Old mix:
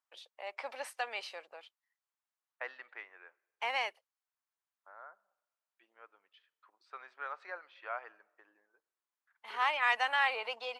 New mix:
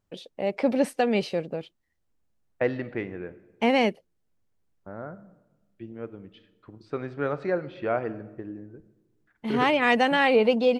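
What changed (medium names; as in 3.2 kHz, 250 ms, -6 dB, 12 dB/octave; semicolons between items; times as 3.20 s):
second voice: send +11.0 dB; master: remove ladder high-pass 820 Hz, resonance 35%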